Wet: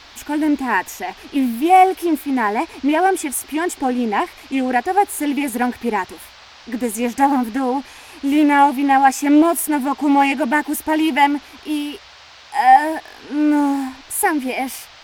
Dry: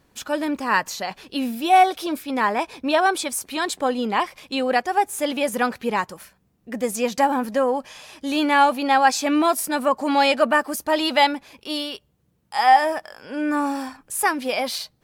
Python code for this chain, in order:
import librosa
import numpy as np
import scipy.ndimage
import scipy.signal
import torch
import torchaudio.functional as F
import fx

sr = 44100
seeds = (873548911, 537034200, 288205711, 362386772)

y = fx.high_shelf(x, sr, hz=8100.0, db=6.0)
y = fx.fixed_phaser(y, sr, hz=840.0, stages=8)
y = fx.dmg_noise_band(y, sr, seeds[0], low_hz=610.0, high_hz=5000.0, level_db=-46.0)
y = fx.low_shelf(y, sr, hz=400.0, db=11.5)
y = fx.doppler_dist(y, sr, depth_ms=0.2)
y = y * 10.0 ** (2.0 / 20.0)